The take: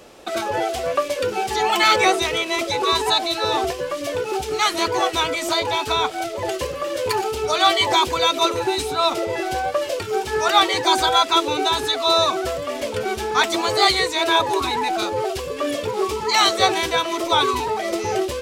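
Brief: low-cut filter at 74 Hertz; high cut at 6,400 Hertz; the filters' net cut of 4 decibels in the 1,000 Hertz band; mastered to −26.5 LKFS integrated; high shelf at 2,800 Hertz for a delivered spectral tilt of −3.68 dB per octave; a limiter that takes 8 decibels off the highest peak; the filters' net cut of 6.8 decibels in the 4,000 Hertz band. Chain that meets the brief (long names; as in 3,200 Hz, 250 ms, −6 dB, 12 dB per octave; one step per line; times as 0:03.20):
high-pass filter 74 Hz
low-pass filter 6,400 Hz
parametric band 1,000 Hz −4.5 dB
high-shelf EQ 2,800 Hz −3 dB
parametric band 4,000 Hz −5 dB
level −1.5 dB
brickwall limiter −15.5 dBFS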